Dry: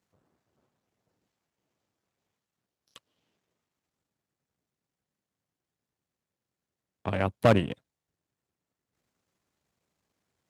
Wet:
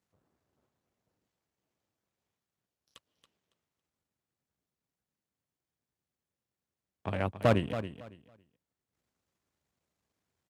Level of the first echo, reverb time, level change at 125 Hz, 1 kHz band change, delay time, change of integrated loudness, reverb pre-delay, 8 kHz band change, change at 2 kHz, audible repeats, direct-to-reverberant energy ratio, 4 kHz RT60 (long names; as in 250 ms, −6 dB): −11.0 dB, no reverb audible, −3.5 dB, −4.0 dB, 278 ms, −5.0 dB, no reverb audible, can't be measured, −4.0 dB, 2, no reverb audible, no reverb audible